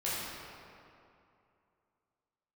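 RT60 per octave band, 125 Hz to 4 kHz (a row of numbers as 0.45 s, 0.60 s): 2.6 s, 2.7 s, 2.6 s, 2.6 s, 2.1 s, 1.6 s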